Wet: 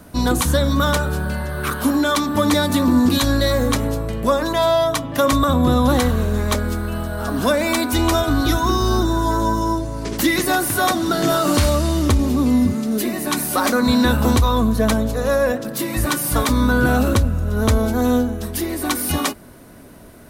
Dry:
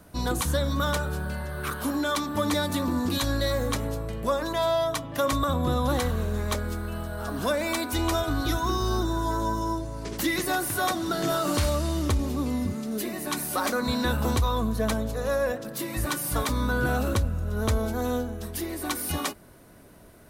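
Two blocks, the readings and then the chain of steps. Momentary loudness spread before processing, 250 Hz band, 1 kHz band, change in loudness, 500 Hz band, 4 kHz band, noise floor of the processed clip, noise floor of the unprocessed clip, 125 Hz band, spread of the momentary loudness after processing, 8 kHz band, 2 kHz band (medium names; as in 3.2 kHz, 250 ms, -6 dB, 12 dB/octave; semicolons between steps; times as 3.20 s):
6 LU, +11.0 dB, +8.0 dB, +9.0 dB, +8.0 dB, +8.0 dB, -42 dBFS, -50 dBFS, +8.0 dB, 7 LU, +8.0 dB, +8.0 dB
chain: peaking EQ 250 Hz +5.5 dB 0.32 oct; trim +8 dB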